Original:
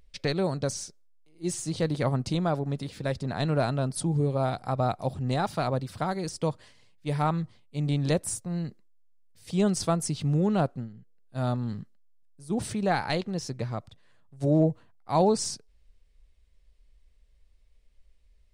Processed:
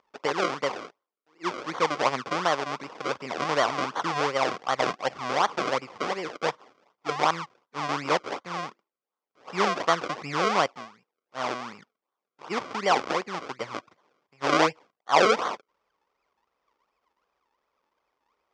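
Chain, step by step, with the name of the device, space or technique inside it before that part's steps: 10.73–12.49 s: tilt EQ +1.5 dB/octave; circuit-bent sampling toy (decimation with a swept rate 34×, swing 100% 2.7 Hz; cabinet simulation 550–5300 Hz, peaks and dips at 650 Hz -4 dB, 1.1 kHz +5 dB, 1.7 kHz -5 dB, 2.8 kHz -4 dB, 4 kHz -7 dB); trim +7.5 dB

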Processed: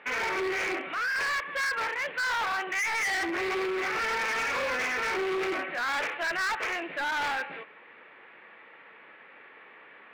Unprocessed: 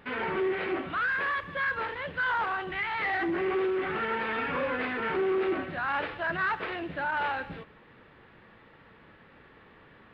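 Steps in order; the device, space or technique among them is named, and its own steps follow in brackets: 0.74–1.16 s: dynamic bell 1.1 kHz, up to -6 dB, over -41 dBFS, Q 0.82; megaphone (band-pass 460–3000 Hz; peaking EQ 2.3 kHz +8.5 dB 0.59 oct; hard clipper -30.5 dBFS, distortion -9 dB); trim +3.5 dB

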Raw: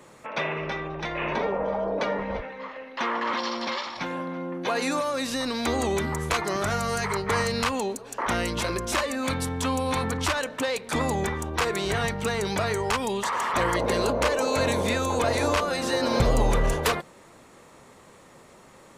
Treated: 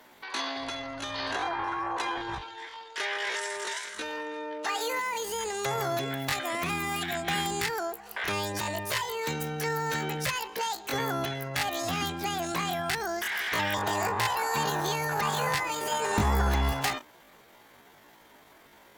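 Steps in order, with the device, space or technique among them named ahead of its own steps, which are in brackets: chipmunk voice (pitch shift +9.5 st); trim -4 dB

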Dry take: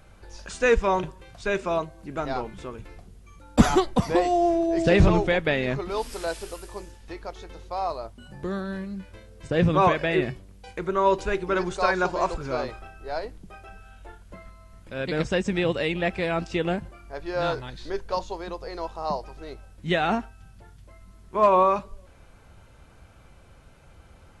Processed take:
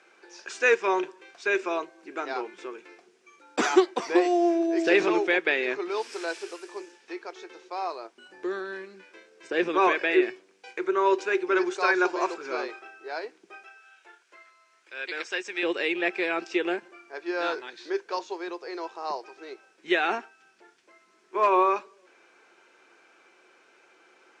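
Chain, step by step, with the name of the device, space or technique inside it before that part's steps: 13.63–15.63 s: high-pass 1.3 kHz 6 dB/octave; phone speaker on a table (cabinet simulation 350–8100 Hz, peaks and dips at 360 Hz +9 dB, 590 Hz -6 dB, 1.6 kHz +6 dB, 2.4 kHz +7 dB, 5.6 kHz +4 dB); trim -2.5 dB

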